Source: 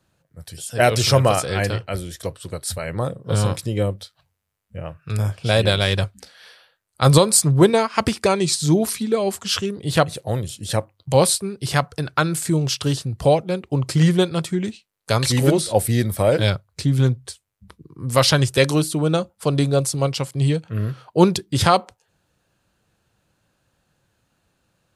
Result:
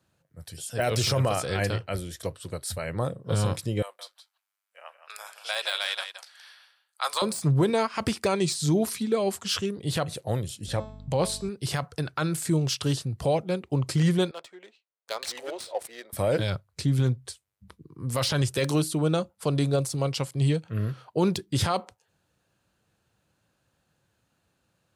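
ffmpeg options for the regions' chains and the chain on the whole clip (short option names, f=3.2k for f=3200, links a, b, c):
-filter_complex "[0:a]asettb=1/sr,asplit=3[a][b][c];[a]atrim=end=3.824[d];[b]atrim=start=3.82:end=7.22,asetpts=PTS-STARTPTS,afade=t=in:d=0.004:c=qsin,afade=t=out:st=3.396:d=0.004:c=qsin,highpass=f=810:w=0.5412,highpass=f=810:w=1.3066,aecho=1:1:169:0.299,atrim=end_sample=149940[e];[c]atrim=start=7.216[f];[d][e]acrossfade=d=0.004:c1=hsin:c2=qsin[g];[g][f]acrossfade=d=0.004:c1=qsin:c2=hsin,asettb=1/sr,asplit=3[h][i][j];[h]atrim=end=10.664[k];[i]atrim=start=10.66:end=11.49,asetpts=PTS-STARTPTS,afade=t=in:d=0.004:c=qsin,afade=t=out:st=0.826:d=0.004:c=qsin,lowpass=f=3.7k:p=1,bandreject=f=216.9:t=h:w=4,bandreject=f=433.8:t=h:w=4,bandreject=f=650.7:t=h:w=4,bandreject=f=867.6:t=h:w=4,bandreject=f=1.0845k:t=h:w=4,bandreject=f=1.3014k:t=h:w=4,bandreject=f=1.5183k:t=h:w=4,bandreject=f=1.7352k:t=h:w=4,bandreject=f=1.9521k:t=h:w=4,bandreject=f=2.169k:t=h:w=4,bandreject=f=2.3859k:t=h:w=4,bandreject=f=2.6028k:t=h:w=4,bandreject=f=2.8197k:t=h:w=4,bandreject=f=3.0366k:t=h:w=4,bandreject=f=3.2535k:t=h:w=4,bandreject=f=3.4704k:t=h:w=4,bandreject=f=3.6873k:t=h:w=4,bandreject=f=3.9042k:t=h:w=4,bandreject=f=4.1211k:t=h:w=4,bandreject=f=4.338k:t=h:w=4,bandreject=f=4.5549k:t=h:w=4,bandreject=f=4.7718k:t=h:w=4,bandreject=f=4.9887k:t=h:w=4,bandreject=f=5.2056k:t=h:w=4,bandreject=f=5.4225k:t=h:w=4,bandreject=f=5.6394k:t=h:w=4,bandreject=f=5.8563k:t=h:w=4,bandreject=f=6.0732k:t=h:w=4,bandreject=f=6.2901k:t=h:w=4,bandreject=f=6.507k:t=h:w=4,bandreject=f=6.7239k:t=h:w=4,bandreject=f=6.9408k:t=h:w=4,bandreject=f=7.1577k:t=h:w=4,bandreject=f=7.3746k:t=h:w=4,bandreject=f=7.5915k:t=h:w=4,bandreject=f=7.8084k:t=h:w=4,aeval=exprs='val(0)+0.0158*(sin(2*PI*50*n/s)+sin(2*PI*2*50*n/s)/2+sin(2*PI*3*50*n/s)/3+sin(2*PI*4*50*n/s)/4+sin(2*PI*5*50*n/s)/5)':c=same[l];[j]atrim=start=11.486[m];[k][l]acrossfade=d=0.004:c1=hsin:c2=qsin[n];[n][m]acrossfade=d=0.004:c1=qsin:c2=hsin,asettb=1/sr,asplit=3[o][p][q];[o]atrim=end=14.314[r];[p]atrim=start=14.31:end=16.13,asetpts=PTS-STARTPTS,afade=t=in:d=0.004:c=qsin,afade=t=out:st=1.816:d=0.004:c=qsin,highpass=f=540:w=0.5412,highpass=f=540:w=1.3066,equalizer=f=1.3k:w=0.33:g=-7.5,adynamicsmooth=sensitivity=4:basefreq=2.1k[s];[q]atrim=start=16.126[t];[r][s]acrossfade=d=0.004:c1=hsin:c2=qsin[u];[u][t]acrossfade=d=0.004:c1=qsin:c2=hsin,highpass=52,deesser=0.4,alimiter=limit=-10dB:level=0:latency=1:release=29,volume=-4.5dB"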